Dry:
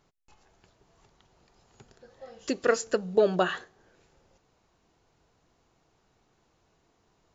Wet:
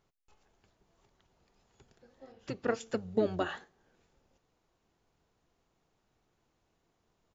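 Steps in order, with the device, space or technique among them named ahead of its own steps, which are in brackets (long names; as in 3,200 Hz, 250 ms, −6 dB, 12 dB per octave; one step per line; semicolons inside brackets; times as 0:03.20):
0:02.32–0:02.81: high-frequency loss of the air 120 metres
octave pedal (pitch-shifted copies added −12 semitones −5 dB)
level −8.5 dB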